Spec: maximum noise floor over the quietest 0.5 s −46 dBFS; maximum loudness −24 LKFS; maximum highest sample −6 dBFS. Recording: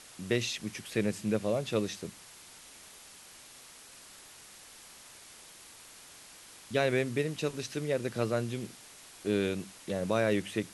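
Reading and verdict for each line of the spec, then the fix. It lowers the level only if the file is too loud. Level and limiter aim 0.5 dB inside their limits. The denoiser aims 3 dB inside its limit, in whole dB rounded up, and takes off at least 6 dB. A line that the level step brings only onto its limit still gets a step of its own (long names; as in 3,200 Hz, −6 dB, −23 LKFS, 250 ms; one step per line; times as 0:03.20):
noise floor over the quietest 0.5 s −53 dBFS: in spec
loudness −32.5 LKFS: in spec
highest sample −14.0 dBFS: in spec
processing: no processing needed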